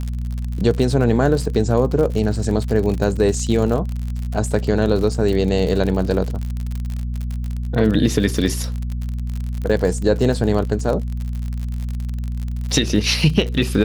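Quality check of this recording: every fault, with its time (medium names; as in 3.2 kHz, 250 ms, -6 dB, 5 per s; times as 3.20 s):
crackle 56 per s -24 dBFS
hum 60 Hz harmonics 4 -24 dBFS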